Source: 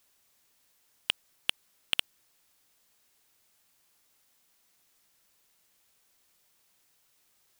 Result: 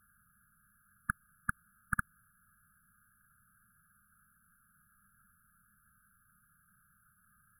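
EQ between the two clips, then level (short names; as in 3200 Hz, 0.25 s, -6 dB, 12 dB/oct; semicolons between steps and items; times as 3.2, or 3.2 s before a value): brick-wall FIR band-stop 230–1200 Hz; brick-wall FIR band-stop 1700–10000 Hz; air absorption 65 m; +15.0 dB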